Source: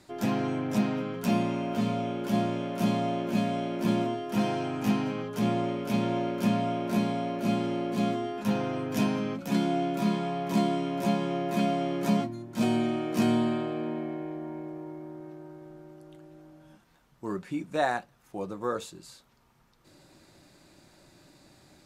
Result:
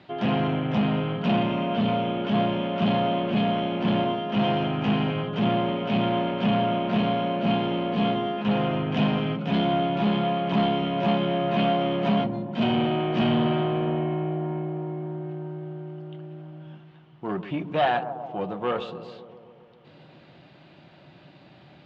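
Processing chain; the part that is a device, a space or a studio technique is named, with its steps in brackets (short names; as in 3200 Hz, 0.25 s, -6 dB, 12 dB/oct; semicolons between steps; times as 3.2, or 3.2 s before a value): analogue delay pedal into a guitar amplifier (analogue delay 0.135 s, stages 1024, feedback 71%, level -13 dB; tube stage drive 25 dB, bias 0.4; speaker cabinet 100–3500 Hz, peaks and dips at 150 Hz +8 dB, 310 Hz -3 dB, 710 Hz +4 dB, 3000 Hz +9 dB); gain +6.5 dB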